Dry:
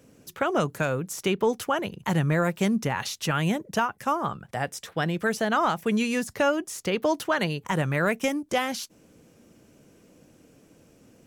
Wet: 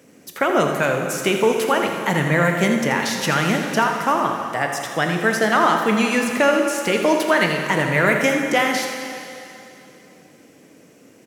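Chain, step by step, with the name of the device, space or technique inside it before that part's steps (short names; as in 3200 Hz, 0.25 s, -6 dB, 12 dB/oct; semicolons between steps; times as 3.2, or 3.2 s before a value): PA in a hall (HPF 180 Hz 12 dB/oct; bell 2000 Hz +6 dB 0.36 oct; echo 83 ms -10 dB; reverb RT60 2.8 s, pre-delay 17 ms, DRR 3.5 dB); gain +5.5 dB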